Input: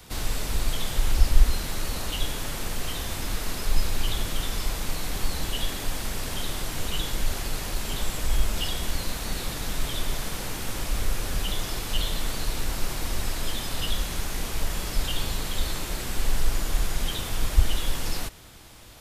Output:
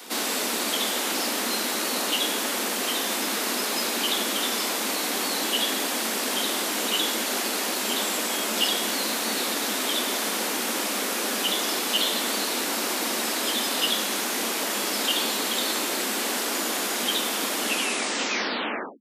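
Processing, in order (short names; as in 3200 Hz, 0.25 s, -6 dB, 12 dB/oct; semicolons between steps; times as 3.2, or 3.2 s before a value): tape stop at the end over 1.43 s; steep high-pass 210 Hz 72 dB/oct; gain +8 dB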